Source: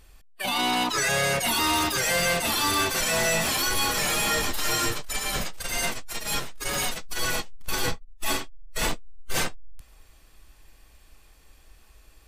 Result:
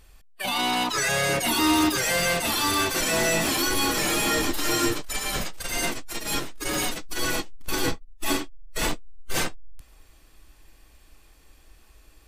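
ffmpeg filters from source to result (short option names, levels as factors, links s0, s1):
-af "asetnsamples=n=441:p=0,asendcmd='1.29 equalizer g 10;1.95 equalizer g 3;2.96 equalizer g 13;5.02 equalizer g 4;5.76 equalizer g 11.5;8.8 equalizer g 4.5',equalizer=f=310:t=o:w=0.53:g=-1"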